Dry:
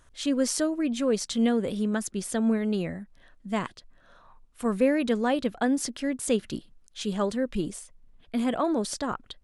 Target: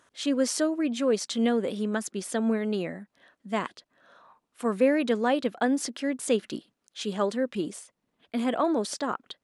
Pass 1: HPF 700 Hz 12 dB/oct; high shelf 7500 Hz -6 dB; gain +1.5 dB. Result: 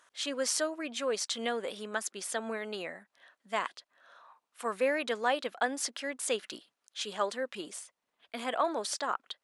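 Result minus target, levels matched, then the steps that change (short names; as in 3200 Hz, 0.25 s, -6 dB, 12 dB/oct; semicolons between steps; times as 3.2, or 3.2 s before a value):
250 Hz band -9.0 dB
change: HPF 240 Hz 12 dB/oct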